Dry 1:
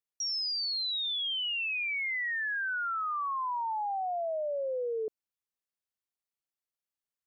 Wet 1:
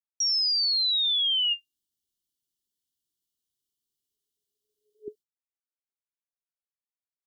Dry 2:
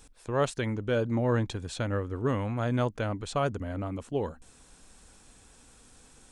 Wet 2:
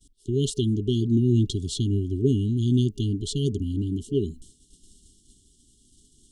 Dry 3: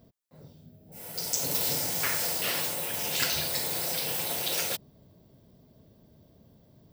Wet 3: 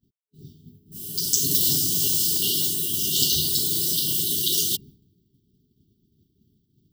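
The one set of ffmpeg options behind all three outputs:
-af "agate=range=-33dB:threshold=-47dB:ratio=3:detection=peak,afftfilt=real='re*(1-between(b*sr/4096,430,2800))':imag='im*(1-between(b*sr/4096,430,2800))':win_size=4096:overlap=0.75,volume=8dB"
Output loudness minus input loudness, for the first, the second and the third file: +9.0, +5.5, +7.5 LU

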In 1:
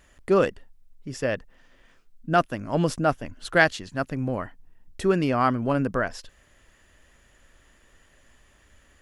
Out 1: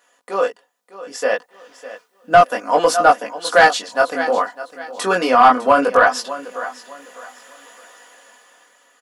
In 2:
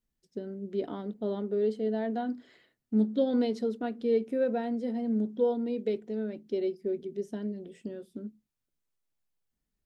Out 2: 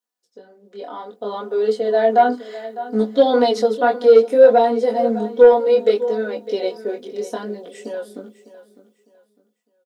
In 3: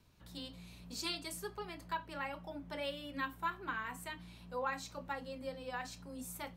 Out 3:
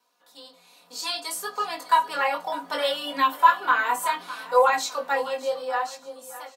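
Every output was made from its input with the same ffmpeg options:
-filter_complex "[0:a]highpass=620,equalizer=f=2.2k:w=0.85:g=-10.5,dynaudnorm=f=300:g=9:m=16dB,flanger=delay=17.5:depth=6.9:speed=0.64,highshelf=f=10k:g=7.5,aecho=1:1:4.1:0.74,asplit=2[a][b];[b]aecho=0:1:604|1208|1812:0.158|0.0444|0.0124[c];[a][c]amix=inputs=2:normalize=0,asplit=2[d][e];[e]highpass=f=720:p=1,volume=15dB,asoftclip=type=tanh:threshold=-0.5dB[f];[d][f]amix=inputs=2:normalize=0,lowpass=f=2.3k:p=1,volume=-6dB,alimiter=level_in=4dB:limit=-1dB:release=50:level=0:latency=1,volume=-1dB"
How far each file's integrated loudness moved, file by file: +9.0, +15.0, +18.0 LU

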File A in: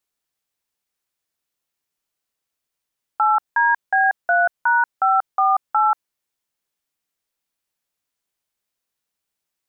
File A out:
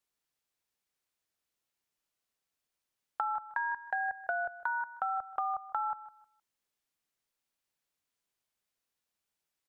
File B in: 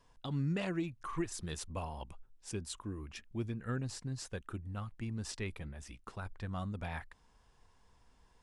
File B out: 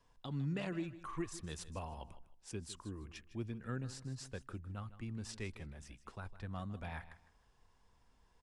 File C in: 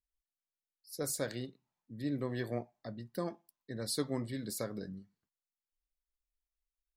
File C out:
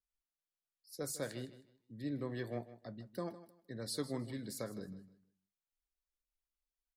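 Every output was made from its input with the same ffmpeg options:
-filter_complex "[0:a]highshelf=f=10k:g=-4,acrossover=split=240[a][b];[b]acompressor=threshold=-27dB:ratio=10[c];[a][c]amix=inputs=2:normalize=0,asplit=2[d][e];[e]aecho=0:1:156|312|468:0.178|0.0427|0.0102[f];[d][f]amix=inputs=2:normalize=0,volume=-4dB"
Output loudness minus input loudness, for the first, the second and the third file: -16.0, -4.0, -4.0 LU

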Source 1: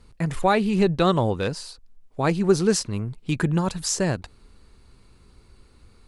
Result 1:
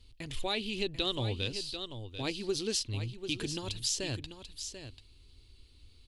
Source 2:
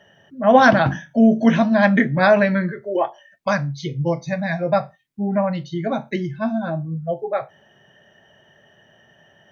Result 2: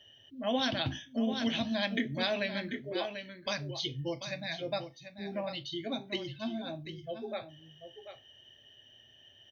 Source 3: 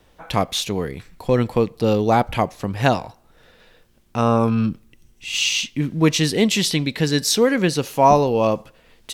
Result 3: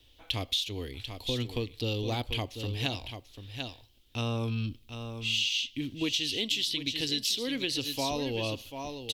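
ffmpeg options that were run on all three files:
-af "firequalizer=gain_entry='entry(110,0);entry(170,-20);entry(260,-3);entry(440,-9);entry(720,-12);entry(1400,-14);entry(3100,10);entry(5900,0);entry(8500,-3);entry(14000,2)':delay=0.05:min_phase=1,aecho=1:1:740:0.299,acompressor=threshold=-22dB:ratio=6,volume=-5dB"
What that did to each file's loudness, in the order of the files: -11.5, -15.5, -12.0 LU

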